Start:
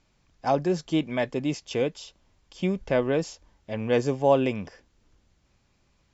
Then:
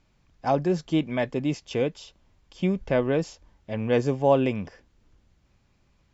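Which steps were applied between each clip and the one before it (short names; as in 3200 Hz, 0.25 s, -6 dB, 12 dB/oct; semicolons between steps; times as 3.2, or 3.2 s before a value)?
tone controls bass +3 dB, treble -4 dB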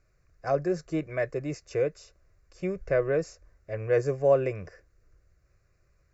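fixed phaser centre 880 Hz, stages 6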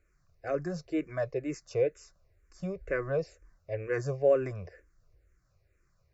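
endless phaser -2.1 Hz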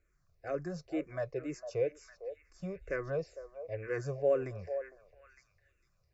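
delay with a stepping band-pass 0.455 s, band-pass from 690 Hz, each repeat 1.4 oct, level -7.5 dB; gain -4.5 dB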